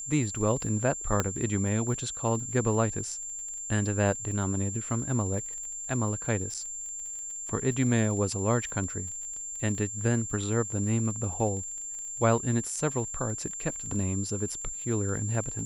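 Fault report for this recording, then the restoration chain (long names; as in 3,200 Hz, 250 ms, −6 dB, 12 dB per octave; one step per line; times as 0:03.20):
surface crackle 27 per second −37 dBFS
whistle 7,300 Hz −35 dBFS
0:01.20: click −11 dBFS
0:06.54–0:06.55: drop-out 6 ms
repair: click removal
notch filter 7,300 Hz, Q 30
repair the gap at 0:06.54, 6 ms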